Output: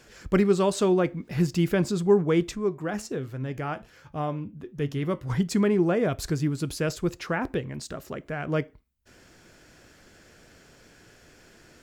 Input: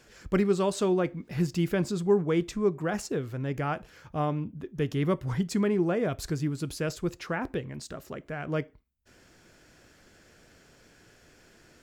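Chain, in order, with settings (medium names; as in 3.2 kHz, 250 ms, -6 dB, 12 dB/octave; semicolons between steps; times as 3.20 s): 2.55–5.30 s: flange 1.3 Hz, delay 6.8 ms, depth 3.2 ms, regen +78%; trim +3.5 dB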